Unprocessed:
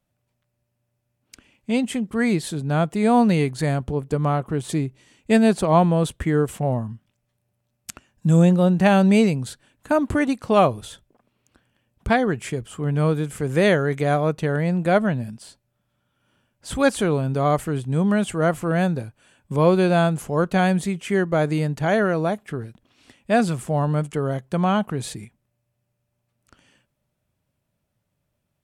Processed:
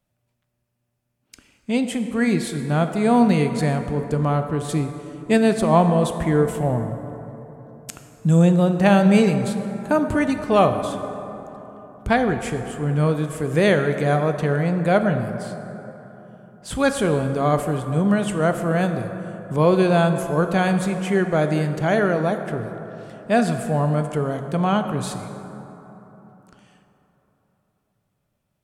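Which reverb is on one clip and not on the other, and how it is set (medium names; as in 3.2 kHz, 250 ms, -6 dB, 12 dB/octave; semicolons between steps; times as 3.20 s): plate-style reverb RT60 3.7 s, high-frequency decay 0.4×, pre-delay 0 ms, DRR 7 dB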